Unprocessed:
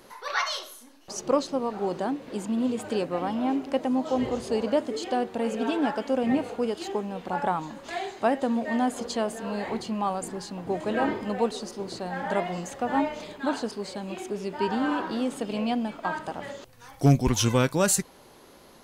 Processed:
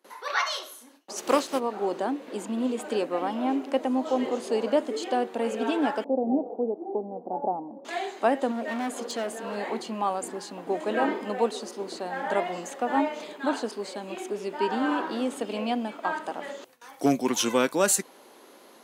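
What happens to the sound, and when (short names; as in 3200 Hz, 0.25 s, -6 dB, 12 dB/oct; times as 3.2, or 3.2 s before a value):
1.16–1.58 spectral contrast lowered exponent 0.65
6.04–7.85 elliptic low-pass 790 Hz, stop band 80 dB
8.51–9.56 hard clip -27 dBFS
whole clip: gate with hold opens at -43 dBFS; HPF 240 Hz 24 dB/oct; bell 5000 Hz -3 dB 0.54 oct; gain +1 dB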